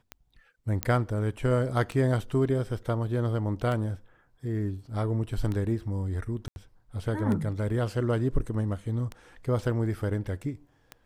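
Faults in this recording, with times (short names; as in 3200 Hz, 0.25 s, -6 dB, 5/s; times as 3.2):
tick 33 1/3 rpm -21 dBFS
0.83 pop -10 dBFS
6.48–6.56 gap 81 ms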